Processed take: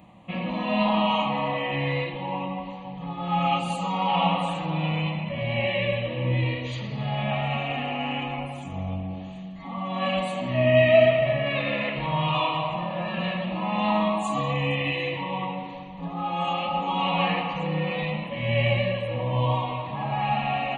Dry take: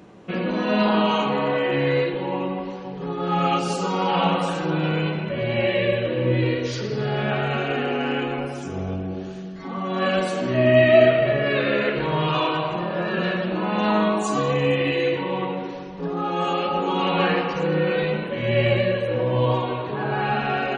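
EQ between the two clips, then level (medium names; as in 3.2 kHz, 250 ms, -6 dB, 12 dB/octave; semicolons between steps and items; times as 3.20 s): static phaser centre 1.5 kHz, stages 6; 0.0 dB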